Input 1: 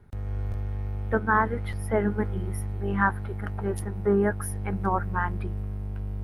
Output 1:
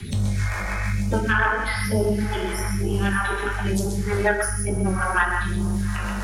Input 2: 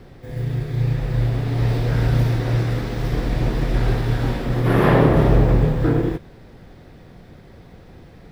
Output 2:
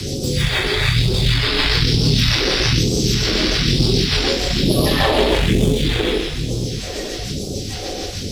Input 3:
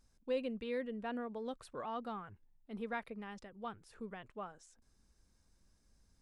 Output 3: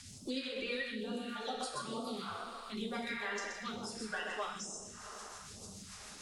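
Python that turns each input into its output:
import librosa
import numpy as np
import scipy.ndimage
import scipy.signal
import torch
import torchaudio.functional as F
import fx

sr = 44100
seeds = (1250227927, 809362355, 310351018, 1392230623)

p1 = fx.spec_quant(x, sr, step_db=30)
p2 = fx.peak_eq(p1, sr, hz=6100.0, db=14.0, octaves=2.4)
p3 = p2 + 10.0 ** (-6.0 / 20.0) * np.pad(p2, (int(126 * sr / 1000.0), 0))[:len(p2)]
p4 = fx.rotary(p3, sr, hz=6.7)
p5 = fx.rev_double_slope(p4, sr, seeds[0], early_s=0.53, late_s=3.3, knee_db=-17, drr_db=-2.5)
p6 = fx.tube_stage(p5, sr, drive_db=3.0, bias=0.65)
p7 = fx.rider(p6, sr, range_db=10, speed_s=2.0)
p8 = p6 + (p7 * librosa.db_to_amplitude(1.5))
p9 = fx.phaser_stages(p8, sr, stages=2, low_hz=110.0, high_hz=1800.0, hz=1.1, feedback_pct=25)
p10 = fx.low_shelf(p9, sr, hz=110.0, db=-6.5)
y = fx.band_squash(p10, sr, depth_pct=70)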